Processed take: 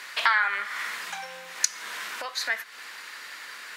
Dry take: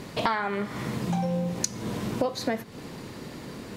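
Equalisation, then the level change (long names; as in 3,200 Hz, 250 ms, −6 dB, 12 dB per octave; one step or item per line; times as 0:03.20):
high-pass with resonance 1,600 Hz, resonance Q 2.3
+4.0 dB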